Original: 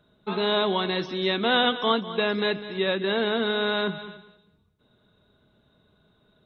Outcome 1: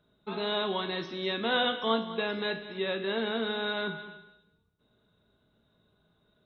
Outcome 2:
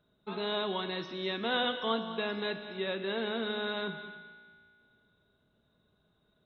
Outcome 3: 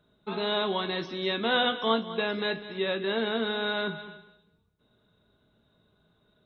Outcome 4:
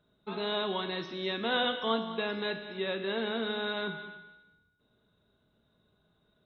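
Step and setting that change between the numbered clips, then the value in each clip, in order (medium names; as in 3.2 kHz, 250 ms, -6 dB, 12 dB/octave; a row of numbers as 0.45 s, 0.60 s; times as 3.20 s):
feedback comb, decay: 0.5 s, 2.2 s, 0.22 s, 1.1 s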